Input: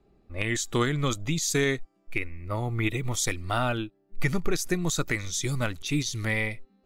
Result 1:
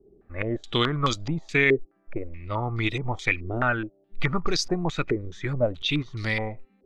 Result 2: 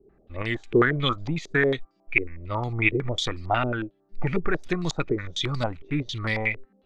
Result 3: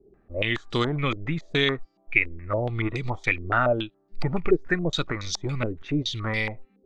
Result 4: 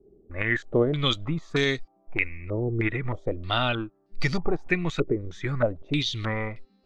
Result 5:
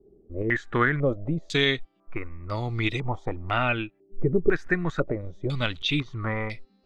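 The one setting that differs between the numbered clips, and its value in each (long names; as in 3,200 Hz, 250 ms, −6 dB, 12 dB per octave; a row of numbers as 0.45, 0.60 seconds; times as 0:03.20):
low-pass on a step sequencer, speed: 4.7, 11, 7.1, 3.2, 2 Hertz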